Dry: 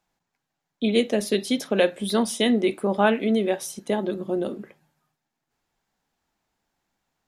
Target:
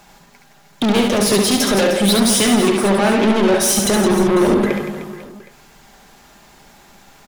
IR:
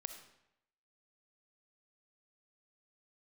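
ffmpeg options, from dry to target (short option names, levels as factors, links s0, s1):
-af "aecho=1:1:5:0.36,acompressor=threshold=0.0282:ratio=12,apsyclip=26.6,asoftclip=type=tanh:threshold=0.2,aecho=1:1:70|168|305.2|497.3|766.2:0.631|0.398|0.251|0.158|0.1"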